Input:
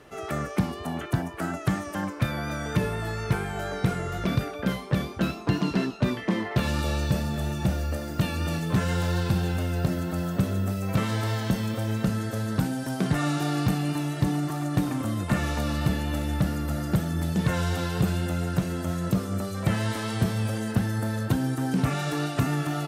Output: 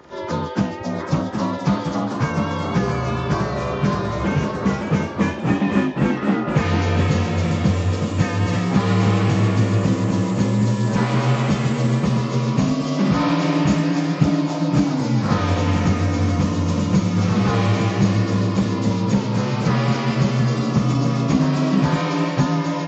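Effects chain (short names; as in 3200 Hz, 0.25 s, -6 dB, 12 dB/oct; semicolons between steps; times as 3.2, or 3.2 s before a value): inharmonic rescaling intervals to 82%; echoes that change speed 0.798 s, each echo +1 st, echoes 2, each echo -6 dB; gain +8 dB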